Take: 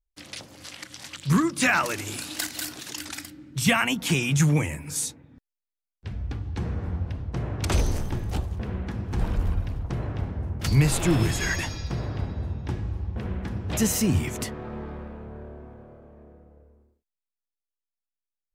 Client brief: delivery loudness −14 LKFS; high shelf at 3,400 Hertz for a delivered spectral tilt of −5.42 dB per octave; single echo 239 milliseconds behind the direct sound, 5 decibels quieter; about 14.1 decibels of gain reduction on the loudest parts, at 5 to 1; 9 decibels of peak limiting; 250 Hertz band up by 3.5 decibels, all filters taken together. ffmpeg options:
ffmpeg -i in.wav -af "equalizer=frequency=250:width_type=o:gain=5,highshelf=frequency=3400:gain=-7.5,acompressor=threshold=-30dB:ratio=5,alimiter=level_in=4.5dB:limit=-24dB:level=0:latency=1,volume=-4.5dB,aecho=1:1:239:0.562,volume=23dB" out.wav

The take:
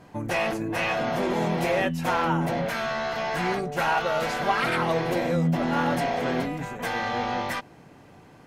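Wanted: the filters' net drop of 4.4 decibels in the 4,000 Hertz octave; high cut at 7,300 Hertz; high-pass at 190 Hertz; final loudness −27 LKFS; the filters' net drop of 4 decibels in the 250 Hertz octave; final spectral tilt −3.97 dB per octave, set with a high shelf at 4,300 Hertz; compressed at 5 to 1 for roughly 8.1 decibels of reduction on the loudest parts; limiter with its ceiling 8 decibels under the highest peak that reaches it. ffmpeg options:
ffmpeg -i in.wav -af "highpass=190,lowpass=7300,equalizer=frequency=250:width_type=o:gain=-3,equalizer=frequency=4000:width_type=o:gain=-8,highshelf=frequency=4300:gain=4,acompressor=threshold=-29dB:ratio=5,volume=7.5dB,alimiter=limit=-18dB:level=0:latency=1" out.wav

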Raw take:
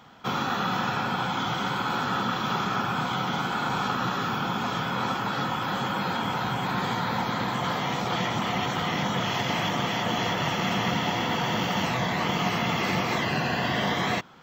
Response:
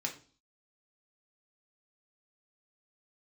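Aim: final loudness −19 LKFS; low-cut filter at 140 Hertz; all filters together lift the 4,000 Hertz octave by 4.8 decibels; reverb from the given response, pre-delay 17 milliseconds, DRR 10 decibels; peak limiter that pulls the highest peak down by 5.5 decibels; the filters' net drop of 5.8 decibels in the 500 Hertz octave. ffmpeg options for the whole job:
-filter_complex "[0:a]highpass=140,equalizer=frequency=500:width_type=o:gain=-8,equalizer=frequency=4000:width_type=o:gain=6.5,alimiter=limit=-18.5dB:level=0:latency=1,asplit=2[link_01][link_02];[1:a]atrim=start_sample=2205,adelay=17[link_03];[link_02][link_03]afir=irnorm=-1:irlink=0,volume=-12dB[link_04];[link_01][link_04]amix=inputs=2:normalize=0,volume=8dB"

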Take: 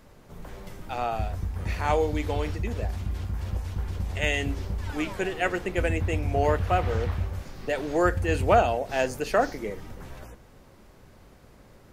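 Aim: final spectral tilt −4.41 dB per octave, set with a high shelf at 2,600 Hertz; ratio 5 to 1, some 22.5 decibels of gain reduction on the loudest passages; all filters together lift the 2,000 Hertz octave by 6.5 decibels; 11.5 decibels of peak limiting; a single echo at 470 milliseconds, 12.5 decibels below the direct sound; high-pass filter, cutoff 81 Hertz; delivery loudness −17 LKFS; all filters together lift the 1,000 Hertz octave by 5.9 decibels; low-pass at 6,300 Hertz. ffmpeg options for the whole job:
ffmpeg -i in.wav -af "highpass=81,lowpass=6300,equalizer=frequency=1000:width_type=o:gain=7.5,equalizer=frequency=2000:width_type=o:gain=3.5,highshelf=frequency=2600:gain=5.5,acompressor=threshold=-37dB:ratio=5,alimiter=level_in=8.5dB:limit=-24dB:level=0:latency=1,volume=-8.5dB,aecho=1:1:470:0.237,volume=25.5dB" out.wav

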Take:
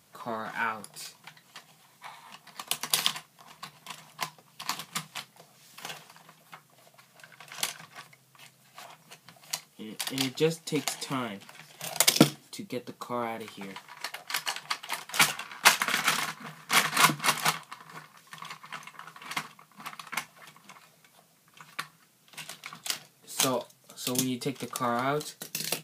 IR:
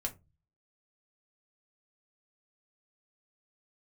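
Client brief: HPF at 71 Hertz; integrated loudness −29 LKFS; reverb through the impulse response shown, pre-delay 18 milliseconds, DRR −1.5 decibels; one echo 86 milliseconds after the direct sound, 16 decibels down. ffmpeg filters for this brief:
-filter_complex "[0:a]highpass=71,aecho=1:1:86:0.158,asplit=2[link_01][link_02];[1:a]atrim=start_sample=2205,adelay=18[link_03];[link_02][link_03]afir=irnorm=-1:irlink=0,volume=0.5dB[link_04];[link_01][link_04]amix=inputs=2:normalize=0,volume=-3.5dB"

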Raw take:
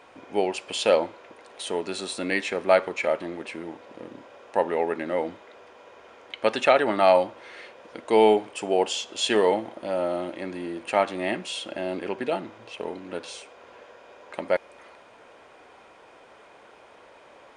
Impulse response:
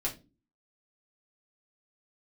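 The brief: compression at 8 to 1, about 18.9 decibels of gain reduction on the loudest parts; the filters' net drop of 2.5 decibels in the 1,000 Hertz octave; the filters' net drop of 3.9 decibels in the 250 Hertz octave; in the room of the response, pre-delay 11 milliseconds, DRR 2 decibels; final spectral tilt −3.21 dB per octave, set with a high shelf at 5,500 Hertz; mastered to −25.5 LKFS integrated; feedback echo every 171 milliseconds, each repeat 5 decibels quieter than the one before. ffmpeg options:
-filter_complex "[0:a]equalizer=frequency=250:width_type=o:gain=-5.5,equalizer=frequency=1000:width_type=o:gain=-3,highshelf=frequency=5500:gain=-3.5,acompressor=threshold=-35dB:ratio=8,aecho=1:1:171|342|513|684|855|1026|1197:0.562|0.315|0.176|0.0988|0.0553|0.031|0.0173,asplit=2[link_01][link_02];[1:a]atrim=start_sample=2205,adelay=11[link_03];[link_02][link_03]afir=irnorm=-1:irlink=0,volume=-6dB[link_04];[link_01][link_04]amix=inputs=2:normalize=0,volume=11dB"

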